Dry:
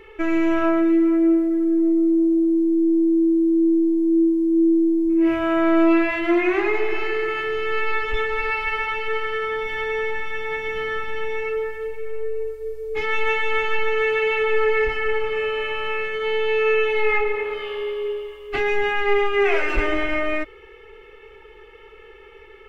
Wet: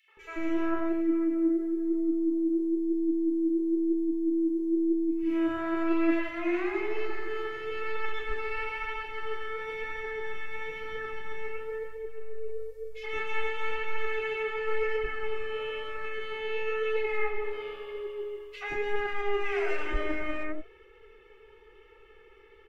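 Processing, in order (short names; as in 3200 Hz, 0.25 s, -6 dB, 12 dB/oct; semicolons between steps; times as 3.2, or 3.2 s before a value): three bands offset in time highs, mids, lows 80/170 ms, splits 690/2500 Hz; flange 1 Hz, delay 1.5 ms, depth 8.4 ms, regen +76%; gain -4.5 dB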